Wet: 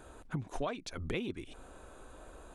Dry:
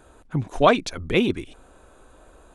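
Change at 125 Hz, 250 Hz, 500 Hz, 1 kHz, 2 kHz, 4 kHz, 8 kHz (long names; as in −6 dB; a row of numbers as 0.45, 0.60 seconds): −12.0, −16.0, −18.5, −20.0, −16.5, −16.5, −11.5 decibels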